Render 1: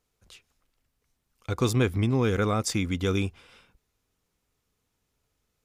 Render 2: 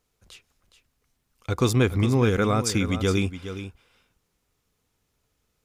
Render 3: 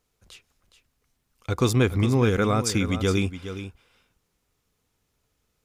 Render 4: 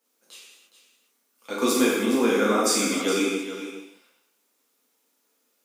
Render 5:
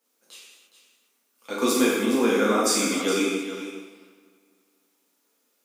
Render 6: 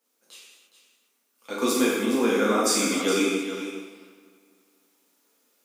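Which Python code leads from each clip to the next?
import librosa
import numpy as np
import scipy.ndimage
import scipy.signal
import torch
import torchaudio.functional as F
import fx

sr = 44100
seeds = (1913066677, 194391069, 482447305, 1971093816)

y1 = x + 10.0 ** (-11.5 / 20.0) * np.pad(x, (int(416 * sr / 1000.0), 0))[:len(x)]
y1 = y1 * 10.0 ** (3.0 / 20.0)
y2 = y1
y3 = scipy.signal.sosfilt(scipy.signal.butter(6, 240.0, 'highpass', fs=sr, output='sos'), y2)
y3 = fx.high_shelf(y3, sr, hz=10000.0, db=11.0)
y3 = fx.rev_gated(y3, sr, seeds[0], gate_ms=350, shape='falling', drr_db=-7.0)
y3 = y3 * 10.0 ** (-5.5 / 20.0)
y4 = fx.echo_wet_lowpass(y3, sr, ms=250, feedback_pct=46, hz=2700.0, wet_db=-18.5)
y5 = fx.rider(y4, sr, range_db=3, speed_s=2.0)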